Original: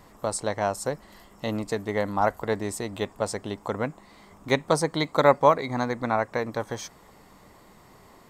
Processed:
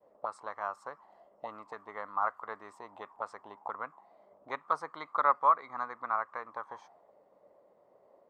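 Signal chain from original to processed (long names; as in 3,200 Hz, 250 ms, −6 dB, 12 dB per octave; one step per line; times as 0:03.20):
downward expander −50 dBFS
envelope filter 540–1,200 Hz, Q 6.1, up, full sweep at −25 dBFS
level +3 dB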